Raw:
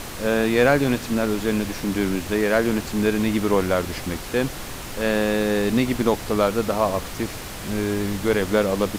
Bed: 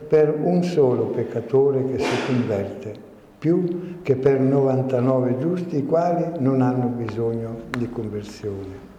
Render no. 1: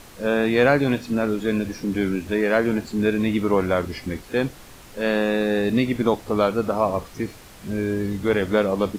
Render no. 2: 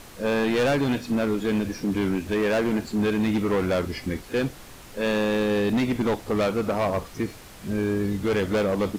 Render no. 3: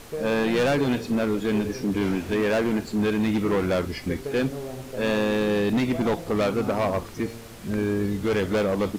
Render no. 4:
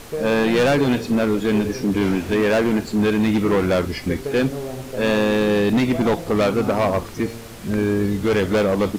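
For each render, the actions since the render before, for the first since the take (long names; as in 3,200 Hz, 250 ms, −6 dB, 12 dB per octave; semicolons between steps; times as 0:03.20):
noise reduction from a noise print 11 dB
hard clipping −19 dBFS, distortion −9 dB
mix in bed −16 dB
level +5 dB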